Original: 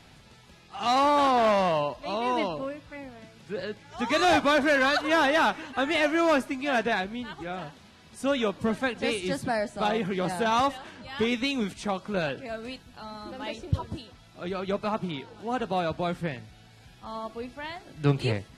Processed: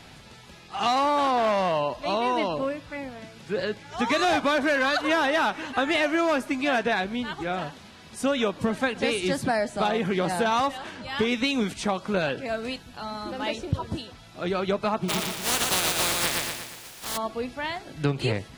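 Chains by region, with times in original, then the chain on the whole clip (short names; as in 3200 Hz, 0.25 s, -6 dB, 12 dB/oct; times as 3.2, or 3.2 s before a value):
15.08–17.16 spectral contrast lowered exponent 0.2 + feedback echo 0.118 s, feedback 49%, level -4 dB
whole clip: low shelf 170 Hz -3.5 dB; compressor, threshold -27 dBFS; gain +6.5 dB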